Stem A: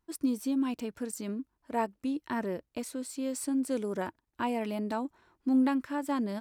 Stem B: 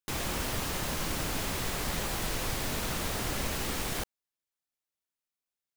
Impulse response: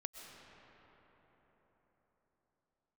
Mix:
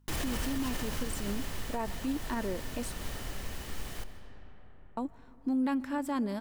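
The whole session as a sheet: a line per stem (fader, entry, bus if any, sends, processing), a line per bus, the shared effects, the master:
-1.0 dB, 0.00 s, muted 2.94–4.97, send -12.5 dB, hum 50 Hz, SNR 31 dB
+2.5 dB, 0.00 s, send -16 dB, low shelf 69 Hz +11.5 dB; small resonant body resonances 1800/3000 Hz, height 9 dB; auto duck -19 dB, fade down 1.90 s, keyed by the first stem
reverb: on, RT60 4.8 s, pre-delay 85 ms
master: limiter -24 dBFS, peak gain reduction 10.5 dB

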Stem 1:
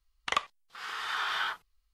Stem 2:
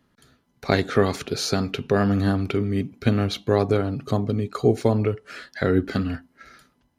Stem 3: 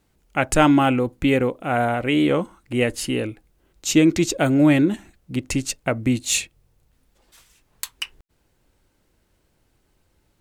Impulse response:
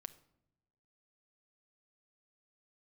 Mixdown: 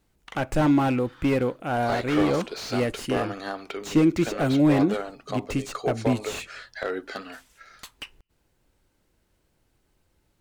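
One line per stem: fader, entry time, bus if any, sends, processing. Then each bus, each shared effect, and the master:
-7.0 dB, 0.00 s, send -12 dB, auto duck -22 dB, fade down 1.15 s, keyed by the third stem
-1.5 dB, 1.20 s, no send, Chebyshev band-pass 620–7700 Hz, order 2
-4.5 dB, 0.00 s, send -14 dB, dry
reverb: on, pre-delay 6 ms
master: slew limiter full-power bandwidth 82 Hz

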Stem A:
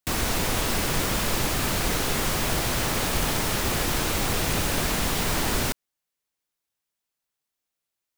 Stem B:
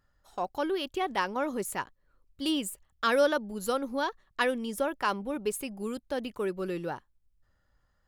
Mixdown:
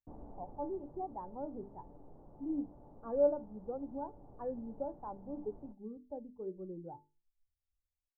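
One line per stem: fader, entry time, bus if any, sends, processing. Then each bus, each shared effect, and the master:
-7.0 dB, 0.00 s, no send, flange 0.32 Hz, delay 3.9 ms, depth 4.2 ms, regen -78%; auto duck -8 dB, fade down 1.00 s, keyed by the second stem
-2.5 dB, 0.00 s, no send, per-bin expansion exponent 1.5; notches 50/100/150/200/250/300/350/400/450 Hz; AGC gain up to 4.5 dB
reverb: off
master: Chebyshev low-pass 850 Hz, order 4; resonator 290 Hz, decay 0.25 s, harmonics all, mix 70%

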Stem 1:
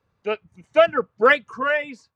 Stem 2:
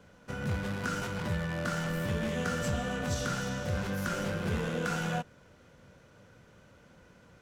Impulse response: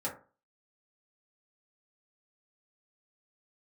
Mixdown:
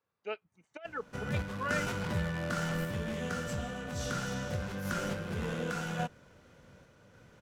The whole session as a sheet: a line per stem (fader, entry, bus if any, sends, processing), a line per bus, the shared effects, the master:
-15.5 dB, 0.00 s, no send, HPF 350 Hz 6 dB/oct; negative-ratio compressor -21 dBFS, ratio -0.5
+0.5 dB, 0.85 s, no send, random-step tremolo 3.5 Hz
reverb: off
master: dry

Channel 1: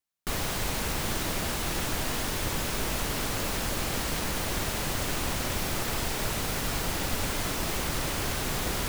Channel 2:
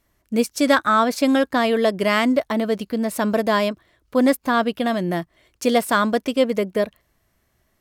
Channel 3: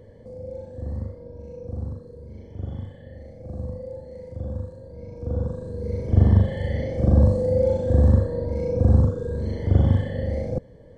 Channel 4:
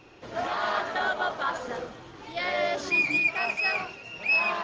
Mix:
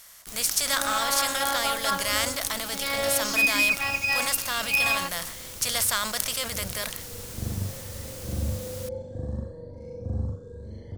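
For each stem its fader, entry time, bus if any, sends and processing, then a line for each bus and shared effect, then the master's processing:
-16.5 dB, 0.00 s, no send, dry
-5.0 dB, 0.00 s, no send, per-bin compression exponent 0.6; passive tone stack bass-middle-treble 10-0-10; sustainer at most 86 dB/s
-10.5 dB, 1.25 s, no send, high shelf 7700 Hz -11 dB; flange 0.49 Hz, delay 5.3 ms, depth 5.9 ms, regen -48%
+2.0 dB, 0.45 s, no send, robotiser 278 Hz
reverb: off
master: tone controls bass +1 dB, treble +11 dB

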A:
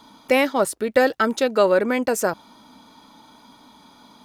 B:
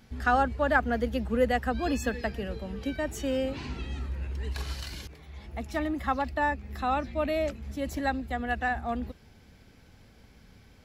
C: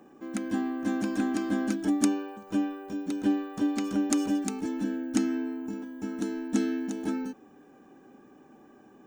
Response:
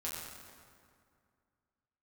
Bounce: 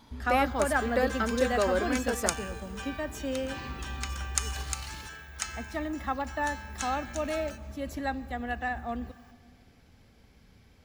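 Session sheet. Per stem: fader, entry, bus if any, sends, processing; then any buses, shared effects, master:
-10.5 dB, 0.00 s, no send, dry
-4.0 dB, 0.00 s, send -17 dB, notch 1500 Hz, Q 30
+2.5 dB, 0.25 s, send -11.5 dB, inverse Chebyshev high-pass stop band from 290 Hz, stop band 60 dB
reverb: on, RT60 2.2 s, pre-delay 6 ms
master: dry

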